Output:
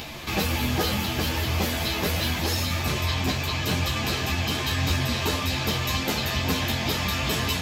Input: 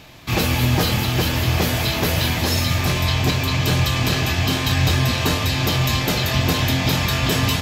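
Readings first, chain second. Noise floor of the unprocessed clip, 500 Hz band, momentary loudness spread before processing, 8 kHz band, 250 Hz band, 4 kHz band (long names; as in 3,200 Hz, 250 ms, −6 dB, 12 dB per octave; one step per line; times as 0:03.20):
−23 dBFS, −5.5 dB, 2 LU, −5.0 dB, −6.0 dB, −5.0 dB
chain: parametric band 110 Hz −13.5 dB 0.29 octaves
upward compression, threshold −20 dBFS
string-ensemble chorus
level −2 dB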